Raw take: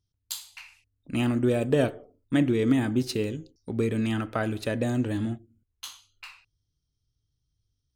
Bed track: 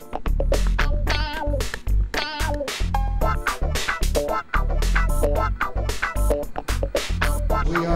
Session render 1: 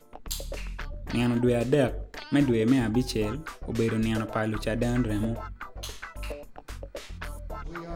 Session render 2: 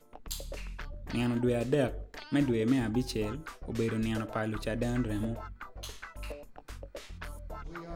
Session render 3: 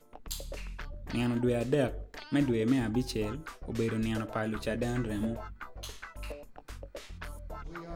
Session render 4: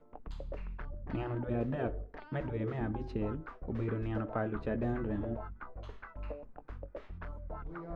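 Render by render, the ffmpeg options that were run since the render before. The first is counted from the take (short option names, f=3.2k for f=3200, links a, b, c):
-filter_complex "[1:a]volume=-16dB[a];[0:a][a]amix=inputs=2:normalize=0"
-af "volume=-5dB"
-filter_complex "[0:a]asettb=1/sr,asplit=3[a][b][c];[a]atrim=end=4.444[d];[b]atrim=start=4.44:end=5.76,asetpts=PTS-STARTPTS,afade=t=in:d=0.004:c=qsin,afade=t=out:st=1.316:d=0.004:c=qsin,asplit=2[e][f];[f]adelay=14,volume=-7dB[g];[e][g]amix=inputs=2:normalize=0,atrim=end_sample=58212[h];[c]atrim=start=5.756[i];[d][h]acrossfade=d=0.004:c1=hsin:c2=qsin[j];[j][i]acrossfade=d=0.004:c1=qsin:c2=hsin"
-af "lowpass=1.3k,afftfilt=real='re*lt(hypot(re,im),0.224)':imag='im*lt(hypot(re,im),0.224)':win_size=1024:overlap=0.75"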